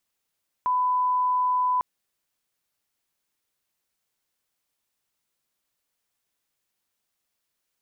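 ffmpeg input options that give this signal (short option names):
-f lavfi -i "sine=f=1000:d=1.15:r=44100,volume=-1.94dB"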